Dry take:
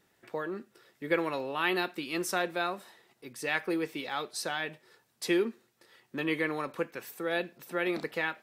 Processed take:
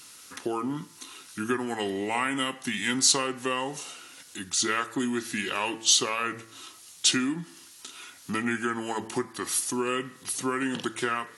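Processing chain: peaking EQ 840 Hz -10 dB 0.23 oct; compression 6:1, threshold -32 dBFS, peak gain reduction 10 dB; tone controls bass -4 dB, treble +12 dB; de-hum 151.2 Hz, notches 20; speed mistake 45 rpm record played at 33 rpm; tape noise reduction on one side only encoder only; trim +7.5 dB

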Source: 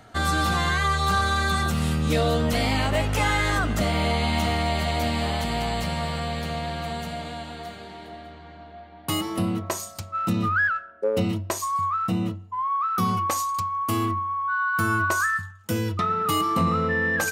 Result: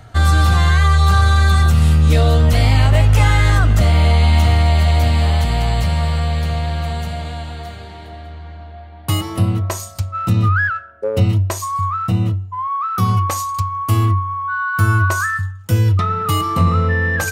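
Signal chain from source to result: resonant low shelf 150 Hz +10 dB, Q 1.5; trim +4 dB

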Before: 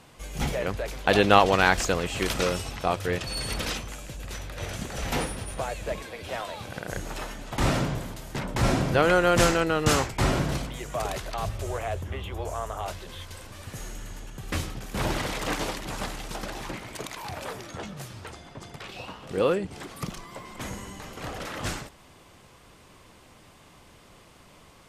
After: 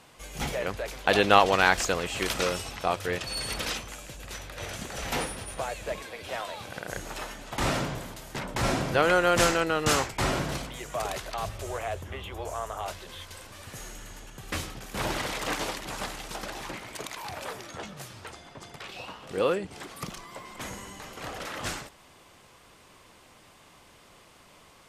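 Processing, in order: bass shelf 320 Hz -7 dB

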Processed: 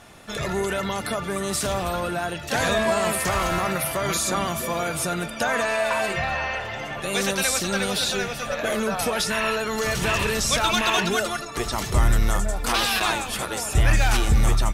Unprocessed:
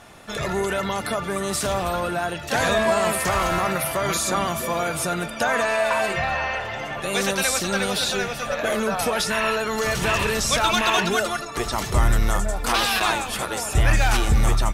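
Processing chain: peaking EQ 910 Hz -2.5 dB 2.2 oct

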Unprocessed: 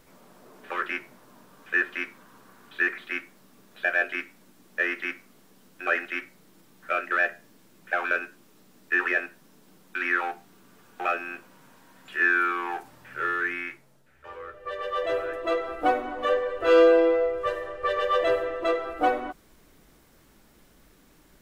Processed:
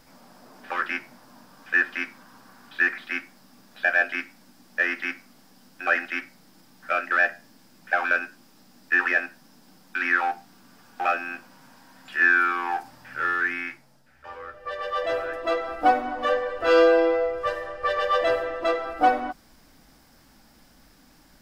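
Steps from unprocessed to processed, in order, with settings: graphic EQ with 31 bands 250 Hz +5 dB, 400 Hz -9 dB, 800 Hz +6 dB, 1.6 kHz +3 dB, 5 kHz +10 dB; trim +1 dB

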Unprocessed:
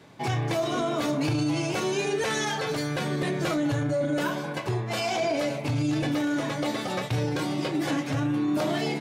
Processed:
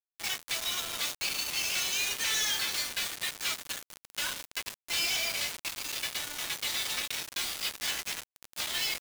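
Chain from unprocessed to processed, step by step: Butterworth band-pass 5.5 kHz, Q 0.66; upward compressor, threshold -46 dBFS; on a send at -14 dB: reverberation RT60 1.8 s, pre-delay 6 ms; on the sum: companded quantiser 2-bit; trim -2 dB

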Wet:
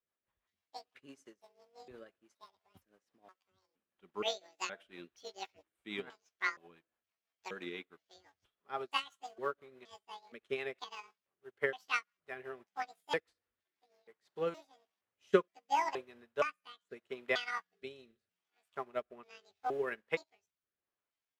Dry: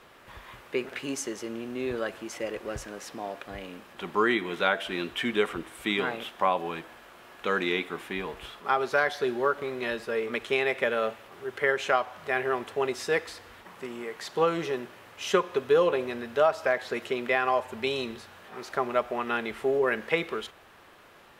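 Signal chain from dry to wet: pitch shift switched off and on +11 st, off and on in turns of 469 ms; rotary cabinet horn 6 Hz, later 0.8 Hz, at 14.09 s; upward expansion 2.5:1, over -47 dBFS

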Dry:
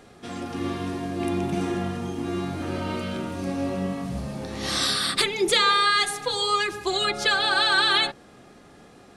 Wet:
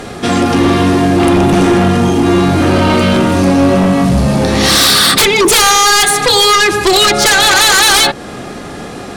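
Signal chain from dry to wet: in parallel at +2.5 dB: compression, threshold -31 dBFS, peak gain reduction 14 dB; on the sum: sine folder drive 13 dB, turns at -5 dBFS

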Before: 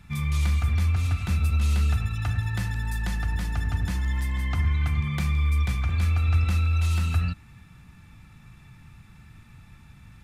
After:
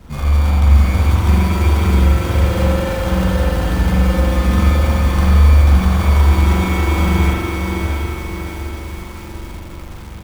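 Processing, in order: CVSD coder 16 kbps; comb 3.8 ms, depth 52%; in parallel at 0 dB: peak limiter -20.5 dBFS, peak gain reduction 7 dB; on the sum: sample-rate reducer 2.3 kHz, jitter 0%; on a send: echo that smears into a reverb 735 ms, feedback 49%, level -6 dB; on the sum: spring tank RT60 1.4 s, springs 43 ms, chirp 40 ms, DRR -5 dB; bit-crushed delay 565 ms, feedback 35%, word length 6-bit, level -6 dB; trim +2 dB

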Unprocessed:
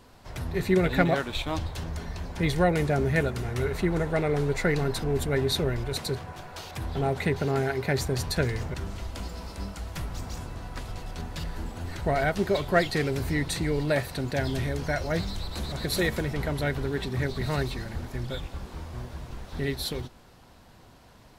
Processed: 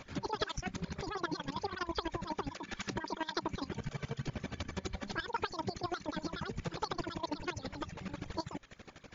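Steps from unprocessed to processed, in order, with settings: compression 4:1, threshold -38 dBFS, peak gain reduction 18 dB; square tremolo 5.2 Hz, depth 60%, duty 30%; reverb removal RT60 1.3 s; speed mistake 33 rpm record played at 78 rpm; trim +6 dB; MP3 56 kbps 16 kHz

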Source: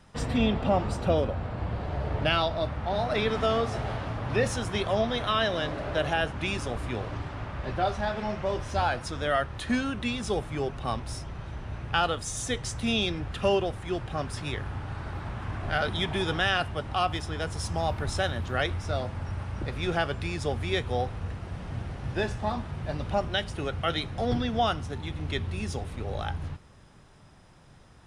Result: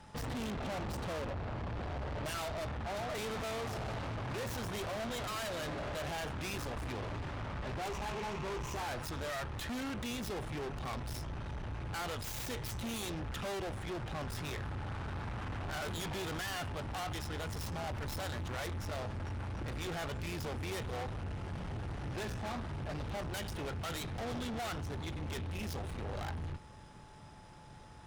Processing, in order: tracing distortion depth 0.23 ms; 7.85–8.82 s: rippled EQ curve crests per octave 0.73, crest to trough 12 dB; valve stage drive 39 dB, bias 0.45; whistle 860 Hz -61 dBFS; trim +2 dB

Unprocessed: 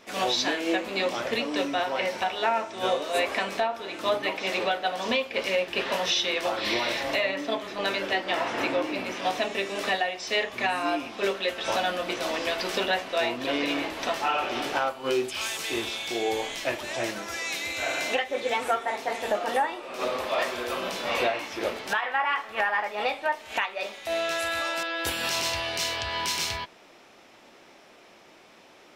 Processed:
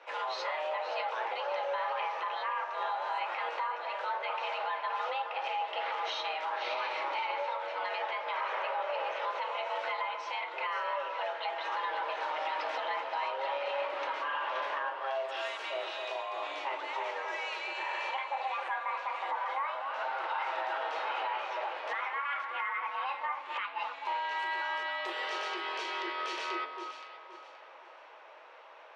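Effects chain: in parallel at -3 dB: compression, threshold -36 dBFS, peak gain reduction 15 dB; on the sum: low-pass 2 kHz 12 dB/octave; peak limiter -22.5 dBFS, peak gain reduction 8.5 dB; on a send: echo whose repeats swap between lows and highs 262 ms, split 1.3 kHz, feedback 55%, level -5.5 dB; on the sum: frequency shift +280 Hz; band-stop 710 Hz, Q 12; trim -4 dB

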